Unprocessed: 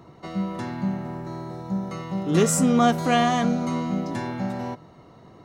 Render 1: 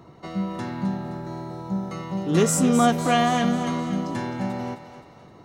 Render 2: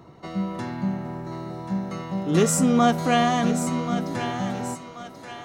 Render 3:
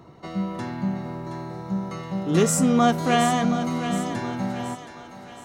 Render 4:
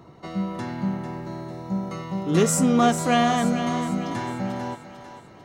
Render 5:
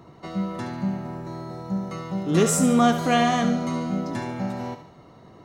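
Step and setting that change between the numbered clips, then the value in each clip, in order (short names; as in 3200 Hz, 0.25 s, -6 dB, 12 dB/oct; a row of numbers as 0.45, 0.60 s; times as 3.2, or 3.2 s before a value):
thinning echo, time: 261, 1084, 722, 447, 72 ms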